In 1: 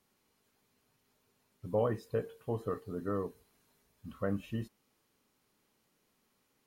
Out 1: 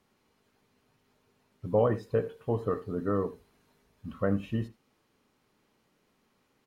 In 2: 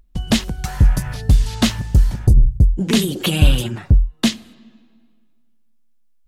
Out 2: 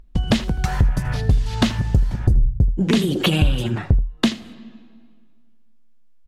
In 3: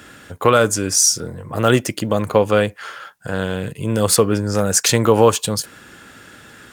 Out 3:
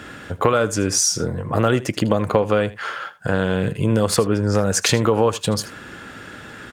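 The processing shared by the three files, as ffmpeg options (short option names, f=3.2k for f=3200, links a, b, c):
-af "lowpass=f=3.1k:p=1,acompressor=threshold=-21dB:ratio=4,aecho=1:1:80:0.133,volume=6dB"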